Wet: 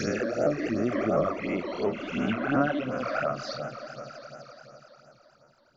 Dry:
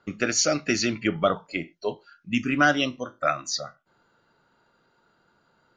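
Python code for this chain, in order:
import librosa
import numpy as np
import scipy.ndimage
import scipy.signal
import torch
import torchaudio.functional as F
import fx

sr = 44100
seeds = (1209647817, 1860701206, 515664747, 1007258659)

y = fx.spec_swells(x, sr, rise_s=1.51)
y = fx.env_lowpass_down(y, sr, base_hz=1100.0, full_db=-16.5)
y = fx.high_shelf(y, sr, hz=4500.0, db=11.0, at=(2.48, 2.94))
y = fx.echo_swell(y, sr, ms=84, loudest=5, wet_db=-18.0)
y = fx.phaser_stages(y, sr, stages=12, low_hz=130.0, high_hz=4000.0, hz=2.8, feedback_pct=35)
y = fx.vibrato_shape(y, sr, shape='saw_up', rate_hz=4.3, depth_cents=100.0)
y = y * librosa.db_to_amplitude(-3.5)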